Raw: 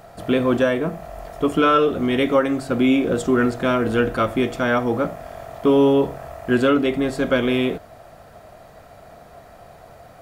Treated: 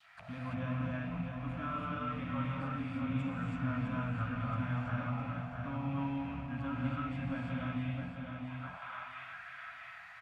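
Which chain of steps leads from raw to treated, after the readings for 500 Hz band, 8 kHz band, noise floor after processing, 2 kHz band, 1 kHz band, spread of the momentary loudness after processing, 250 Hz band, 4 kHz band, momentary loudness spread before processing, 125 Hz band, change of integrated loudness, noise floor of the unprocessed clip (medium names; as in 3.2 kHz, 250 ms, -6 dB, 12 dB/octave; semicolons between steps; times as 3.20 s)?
-28.0 dB, under -25 dB, -50 dBFS, -16.0 dB, -15.5 dB, 9 LU, -17.0 dB, -22.0 dB, 10 LU, -5.5 dB, -18.5 dB, -46 dBFS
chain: rattle on loud lows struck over -35 dBFS, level -20 dBFS; Chebyshev band-stop 130–1100 Hz, order 2; bass shelf 110 Hz +9 dB; on a send: feedback delay 660 ms, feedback 36%, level -7.5 dB; on the sum: expander -48 dBFS; auto-wah 330–3900 Hz, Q 2.9, down, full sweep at -30.5 dBFS; in parallel at -0.5 dB: peak limiter -39 dBFS, peak gain reduction 10.5 dB; on the sum: gated-style reverb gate 360 ms rising, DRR -5 dB; trim -5 dB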